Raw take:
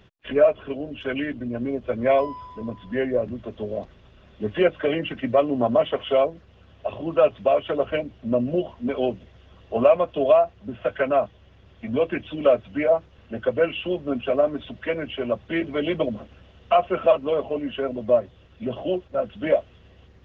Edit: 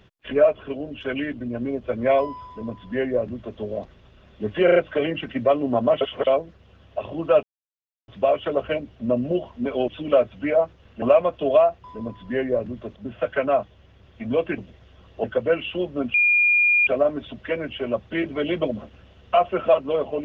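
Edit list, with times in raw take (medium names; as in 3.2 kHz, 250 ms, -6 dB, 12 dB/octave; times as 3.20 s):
2.46–3.58 s: copy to 10.59 s
4.64 s: stutter 0.04 s, 4 plays
5.89–6.15 s: reverse
7.31 s: insert silence 0.65 s
9.11–9.77 s: swap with 12.21–13.35 s
14.25 s: add tone 2.42 kHz -14.5 dBFS 0.73 s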